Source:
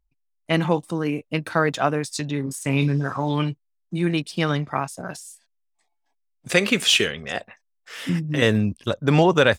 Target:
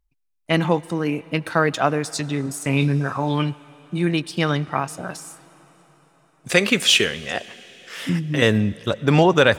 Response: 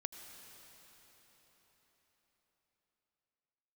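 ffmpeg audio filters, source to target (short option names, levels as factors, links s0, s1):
-filter_complex "[0:a]asplit=2[s0][s1];[1:a]atrim=start_sample=2205,lowshelf=f=410:g=-5[s2];[s1][s2]afir=irnorm=-1:irlink=0,volume=0.376[s3];[s0][s3]amix=inputs=2:normalize=0"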